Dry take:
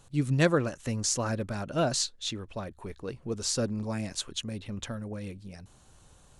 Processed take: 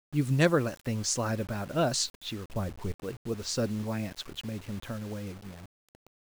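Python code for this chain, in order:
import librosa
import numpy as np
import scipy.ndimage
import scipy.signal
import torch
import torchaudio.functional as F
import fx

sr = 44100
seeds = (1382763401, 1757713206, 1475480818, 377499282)

y = fx.env_lowpass(x, sr, base_hz=1000.0, full_db=-23.0)
y = fx.low_shelf(y, sr, hz=190.0, db=11.0, at=(2.52, 2.92))
y = fx.quant_dither(y, sr, seeds[0], bits=8, dither='none')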